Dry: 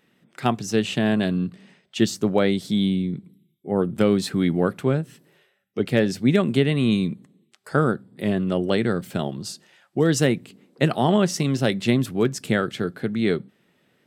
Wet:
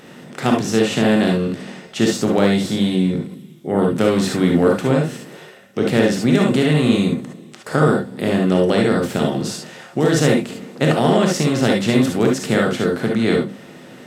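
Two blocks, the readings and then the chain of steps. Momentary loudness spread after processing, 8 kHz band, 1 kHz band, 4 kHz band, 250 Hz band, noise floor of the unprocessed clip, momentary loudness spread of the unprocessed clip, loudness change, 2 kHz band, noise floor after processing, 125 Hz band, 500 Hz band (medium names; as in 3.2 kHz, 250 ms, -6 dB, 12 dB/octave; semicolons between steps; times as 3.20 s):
11 LU, +5.5 dB, +5.5 dB, +5.0 dB, +5.0 dB, -66 dBFS, 10 LU, +5.0 dB, +5.5 dB, -41 dBFS, +4.0 dB, +6.0 dB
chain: spectral levelling over time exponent 0.6; gated-style reverb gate 90 ms rising, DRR 0 dB; trim -1.5 dB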